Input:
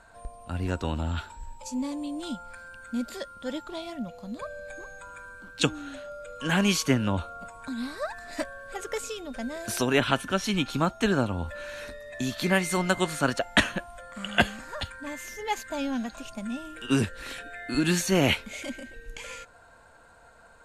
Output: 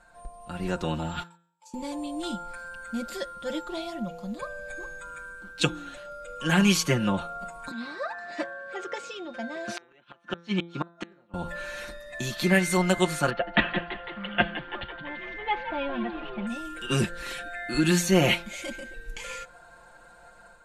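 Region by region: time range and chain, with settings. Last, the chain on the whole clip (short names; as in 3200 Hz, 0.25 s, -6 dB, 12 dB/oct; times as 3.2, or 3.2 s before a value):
1.23–1.74 HPF 770 Hz 24 dB/oct + gate -47 dBFS, range -29 dB + compressor 2.5:1, threshold -59 dBFS
7.71–11.34 HPF 190 Hz + flipped gate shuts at -17 dBFS, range -37 dB + air absorption 140 m
13.3–16.47 steep low-pass 3300 Hz + frequency-shifting echo 0.167 s, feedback 60%, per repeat +77 Hz, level -11 dB
whole clip: comb 5.7 ms, depth 80%; de-hum 170.5 Hz, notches 23; AGC gain up to 5.5 dB; gain -5.5 dB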